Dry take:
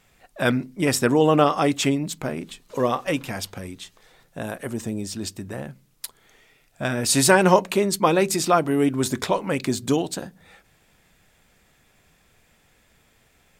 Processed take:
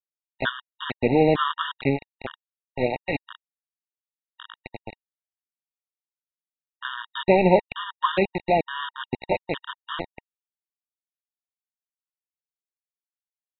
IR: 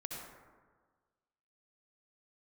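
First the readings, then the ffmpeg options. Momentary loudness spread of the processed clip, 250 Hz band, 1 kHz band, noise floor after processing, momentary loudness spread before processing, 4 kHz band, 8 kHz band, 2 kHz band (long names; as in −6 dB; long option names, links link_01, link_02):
20 LU, −5.5 dB, −3.0 dB, below −85 dBFS, 18 LU, −4.5 dB, below −40 dB, −3.5 dB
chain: -af "aresample=8000,aeval=exprs='val(0)*gte(abs(val(0)),0.106)':channel_layout=same,aresample=44100,afftfilt=real='re*gt(sin(2*PI*1.1*pts/sr)*(1-2*mod(floor(b*sr/1024/940),2)),0)':imag='im*gt(sin(2*PI*1.1*pts/sr)*(1-2*mod(floor(b*sr/1024/940),2)),0)':win_size=1024:overlap=0.75"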